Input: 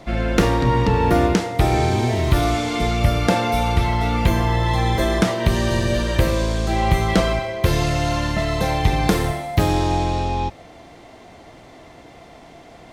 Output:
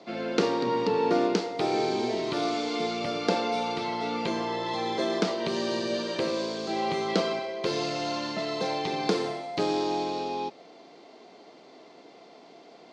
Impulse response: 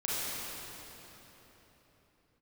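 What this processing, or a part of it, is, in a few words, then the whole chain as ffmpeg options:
television speaker: -af "highpass=f=200:w=0.5412,highpass=f=200:w=1.3066,equalizer=f=420:t=q:w=4:g=7,equalizer=f=1.8k:t=q:w=4:g=-5,equalizer=f=4.5k:t=q:w=4:g=8,lowpass=f=6.7k:w=0.5412,lowpass=f=6.7k:w=1.3066,volume=-8dB"

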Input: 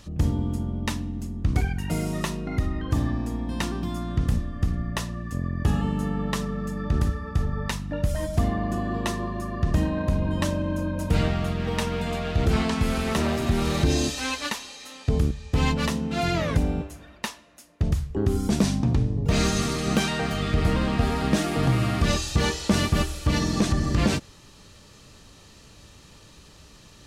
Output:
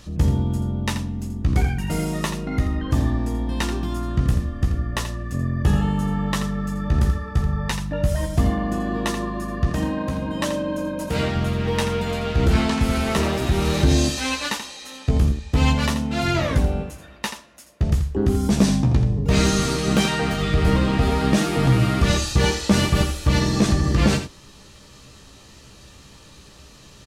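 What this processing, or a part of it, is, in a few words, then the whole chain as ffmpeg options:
slapback doubling: -filter_complex "[0:a]asplit=3[a][b][c];[b]adelay=15,volume=-6.5dB[d];[c]adelay=83,volume=-9dB[e];[a][d][e]amix=inputs=3:normalize=0,asettb=1/sr,asplit=3[f][g][h];[f]atrim=end=9.704[i];[g]atrim=start=9.7:end=11.35,asetpts=PTS-STARTPTS,afade=t=in:d=0.004:c=qsin,afade=t=out:st=1.646:d=0.004:c=qsin,highpass=f=210:p=1[j];[h]atrim=start=11.346[k];[i][j]acrossfade=d=0.004:c1=hsin:c2=qsin[l];[l][k]acrossfade=d=0.004:c1=qsin:c2=hsin,volume=2.5dB"

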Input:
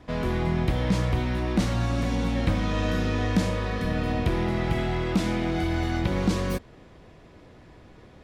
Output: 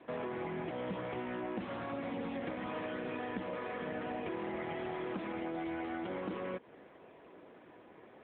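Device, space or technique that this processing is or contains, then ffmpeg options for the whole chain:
voicemail: -filter_complex "[0:a]asettb=1/sr,asplit=3[a][b][c];[a]atrim=end=2.874[d];[b]atrim=start=2.87:end=3.77,asetpts=PTS-STARTPTS,afade=t=in:d=0.004:c=qsin,afade=t=out:st=0.896:d=0.004:c=qsin,lowpass=7.1k[e];[c]atrim=start=3.766[f];[d][e]acrossfade=d=0.004:c1=hsin:c2=qsin[g];[g][f]acrossfade=d=0.004:c1=qsin:c2=hsin,highpass=310,lowpass=2.8k,acompressor=threshold=-34dB:ratio=6,volume=-1dB" -ar 8000 -c:a libopencore_amrnb -b:a 7950

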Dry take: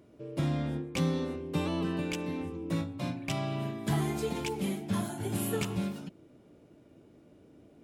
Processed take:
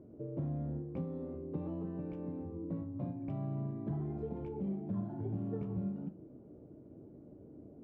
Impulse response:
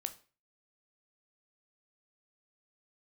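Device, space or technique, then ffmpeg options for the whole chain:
television next door: -filter_complex "[0:a]acompressor=threshold=-42dB:ratio=3,lowpass=550[a];[1:a]atrim=start_sample=2205[b];[a][b]afir=irnorm=-1:irlink=0,volume=5.5dB"

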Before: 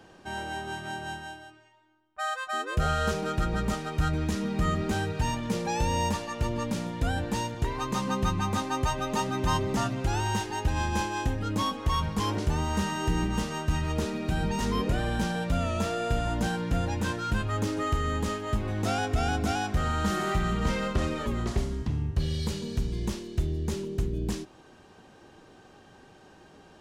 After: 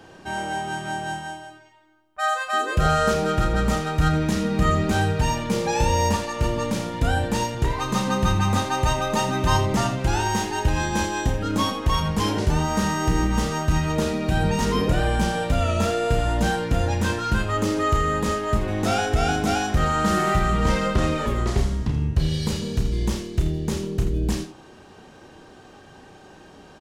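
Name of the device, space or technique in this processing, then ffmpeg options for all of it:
slapback doubling: -filter_complex "[0:a]asplit=3[a][b][c];[b]adelay=32,volume=-6.5dB[d];[c]adelay=82,volume=-10dB[e];[a][d][e]amix=inputs=3:normalize=0,volume=5.5dB"

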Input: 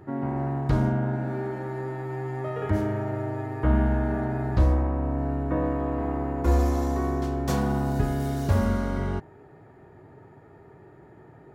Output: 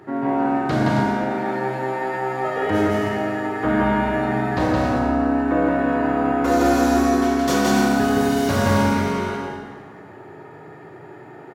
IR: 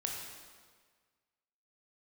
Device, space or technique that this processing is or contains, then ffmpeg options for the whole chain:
stadium PA: -filter_complex "[0:a]highpass=190,equalizer=f=3.2k:t=o:w=2.7:g=5,aecho=1:1:169.1|271.1:0.891|0.501[a];[1:a]atrim=start_sample=2205[b];[a][b]afir=irnorm=-1:irlink=0,volume=5.5dB"

